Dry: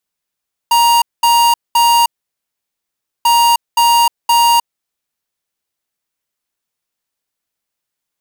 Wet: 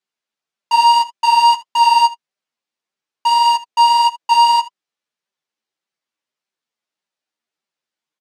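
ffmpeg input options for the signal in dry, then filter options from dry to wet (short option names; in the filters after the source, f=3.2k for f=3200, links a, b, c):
-f lavfi -i "aevalsrc='0.316*(2*lt(mod(940*t,1),0.5)-1)*clip(min(mod(mod(t,2.54),0.52),0.31-mod(mod(t,2.54),0.52))/0.005,0,1)*lt(mod(t,2.54),1.56)':d=5.08:s=44100"
-af "flanger=delay=5:depth=4.6:regen=20:speed=1.7:shape=sinusoidal,highpass=180,lowpass=5.5k,aecho=1:1:13|79:0.596|0.133"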